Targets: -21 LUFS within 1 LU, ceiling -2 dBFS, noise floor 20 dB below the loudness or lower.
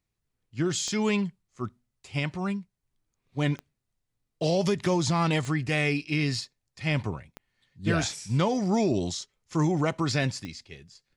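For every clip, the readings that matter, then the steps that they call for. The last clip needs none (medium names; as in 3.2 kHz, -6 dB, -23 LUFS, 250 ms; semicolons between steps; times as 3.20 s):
clicks found 5; loudness -28.0 LUFS; peak level -14.5 dBFS; loudness target -21.0 LUFS
-> de-click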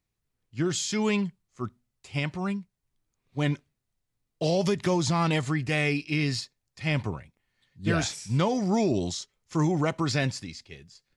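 clicks found 0; loudness -28.0 LUFS; peak level -14.5 dBFS; loudness target -21.0 LUFS
-> trim +7 dB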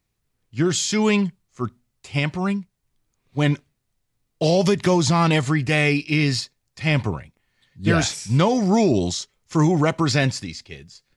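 loudness -21.0 LUFS; peak level -7.5 dBFS; noise floor -75 dBFS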